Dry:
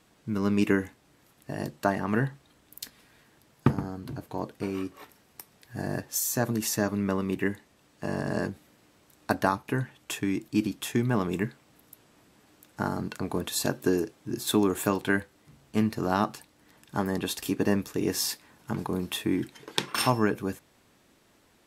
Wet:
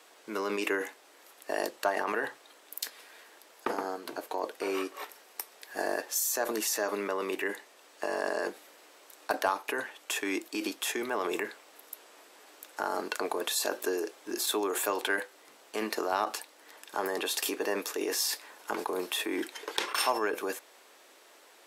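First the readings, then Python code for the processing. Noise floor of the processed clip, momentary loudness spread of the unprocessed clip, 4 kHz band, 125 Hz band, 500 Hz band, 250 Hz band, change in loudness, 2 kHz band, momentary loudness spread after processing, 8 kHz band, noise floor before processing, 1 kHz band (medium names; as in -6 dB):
-58 dBFS, 13 LU, +0.5 dB, under -25 dB, -1.0 dB, -10.5 dB, -3.5 dB, +1.0 dB, 13 LU, +0.5 dB, -63 dBFS, -0.5 dB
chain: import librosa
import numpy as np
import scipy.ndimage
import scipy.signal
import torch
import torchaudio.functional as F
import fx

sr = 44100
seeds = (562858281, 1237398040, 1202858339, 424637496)

p1 = scipy.signal.sosfilt(scipy.signal.butter(4, 410.0, 'highpass', fs=sr, output='sos'), x)
p2 = fx.over_compress(p1, sr, threshold_db=-38.0, ratio=-0.5)
p3 = p1 + (p2 * librosa.db_to_amplitude(0.0))
p4 = 10.0 ** (-11.5 / 20.0) * np.tanh(p3 / 10.0 ** (-11.5 / 20.0))
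y = p4 * librosa.db_to_amplitude(-1.5)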